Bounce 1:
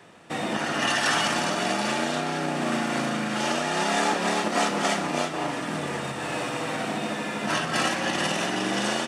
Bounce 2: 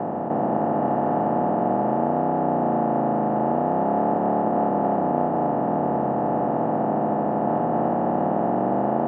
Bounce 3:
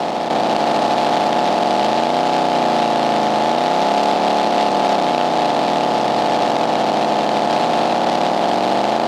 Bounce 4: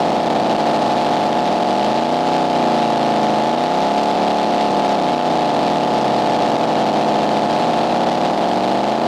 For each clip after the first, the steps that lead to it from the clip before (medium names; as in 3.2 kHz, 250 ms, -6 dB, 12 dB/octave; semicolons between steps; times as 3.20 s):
spectral levelling over time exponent 0.2; Chebyshev low-pass 790 Hz, order 3
tilt EQ +4 dB/octave; in parallel at +1 dB: peak limiter -18.5 dBFS, peak gain reduction 7 dB; on the sum: delay time shaken by noise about 2.7 kHz, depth 0.05 ms; trim +3.5 dB
bass shelf 390 Hz +5.5 dB; loudness maximiser +13.5 dB; trim -7.5 dB